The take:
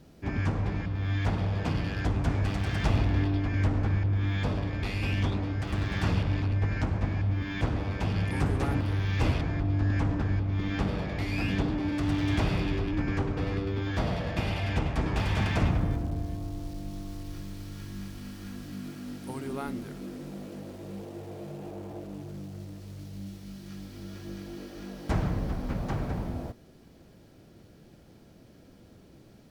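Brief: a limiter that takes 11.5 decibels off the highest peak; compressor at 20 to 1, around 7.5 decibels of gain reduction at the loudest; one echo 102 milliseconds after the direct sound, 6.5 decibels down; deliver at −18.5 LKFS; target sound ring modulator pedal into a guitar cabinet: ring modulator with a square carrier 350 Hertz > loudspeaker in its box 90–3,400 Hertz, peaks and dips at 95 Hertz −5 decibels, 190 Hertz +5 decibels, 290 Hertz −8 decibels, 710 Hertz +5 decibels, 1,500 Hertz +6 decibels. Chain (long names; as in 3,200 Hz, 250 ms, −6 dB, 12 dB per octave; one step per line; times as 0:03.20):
downward compressor 20 to 1, threshold −28 dBFS
brickwall limiter −31.5 dBFS
single-tap delay 102 ms −6.5 dB
ring modulator with a square carrier 350 Hz
loudspeaker in its box 90–3,400 Hz, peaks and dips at 95 Hz −5 dB, 190 Hz +5 dB, 290 Hz −8 dB, 710 Hz +5 dB, 1,500 Hz +6 dB
level +18.5 dB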